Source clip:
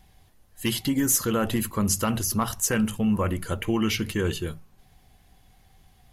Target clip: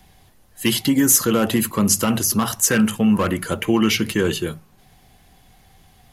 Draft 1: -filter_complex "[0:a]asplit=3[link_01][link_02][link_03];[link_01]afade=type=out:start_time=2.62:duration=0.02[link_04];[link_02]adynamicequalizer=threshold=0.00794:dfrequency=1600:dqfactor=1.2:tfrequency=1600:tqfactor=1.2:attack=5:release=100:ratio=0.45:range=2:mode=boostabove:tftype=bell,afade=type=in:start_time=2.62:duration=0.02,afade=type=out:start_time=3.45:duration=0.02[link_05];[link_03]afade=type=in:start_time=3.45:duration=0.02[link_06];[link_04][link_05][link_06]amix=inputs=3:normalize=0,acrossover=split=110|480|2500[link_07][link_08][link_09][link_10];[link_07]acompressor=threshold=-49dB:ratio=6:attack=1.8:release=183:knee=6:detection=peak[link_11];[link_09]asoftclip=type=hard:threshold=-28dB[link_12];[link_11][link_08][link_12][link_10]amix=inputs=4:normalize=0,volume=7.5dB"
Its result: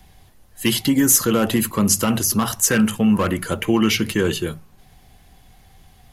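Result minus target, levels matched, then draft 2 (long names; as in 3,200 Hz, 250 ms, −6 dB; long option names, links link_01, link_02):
downward compressor: peak gain reduction −8.5 dB
-filter_complex "[0:a]asplit=3[link_01][link_02][link_03];[link_01]afade=type=out:start_time=2.62:duration=0.02[link_04];[link_02]adynamicequalizer=threshold=0.00794:dfrequency=1600:dqfactor=1.2:tfrequency=1600:tqfactor=1.2:attack=5:release=100:ratio=0.45:range=2:mode=boostabove:tftype=bell,afade=type=in:start_time=2.62:duration=0.02,afade=type=out:start_time=3.45:duration=0.02[link_05];[link_03]afade=type=in:start_time=3.45:duration=0.02[link_06];[link_04][link_05][link_06]amix=inputs=3:normalize=0,acrossover=split=110|480|2500[link_07][link_08][link_09][link_10];[link_07]acompressor=threshold=-59dB:ratio=6:attack=1.8:release=183:knee=6:detection=peak[link_11];[link_09]asoftclip=type=hard:threshold=-28dB[link_12];[link_11][link_08][link_12][link_10]amix=inputs=4:normalize=0,volume=7.5dB"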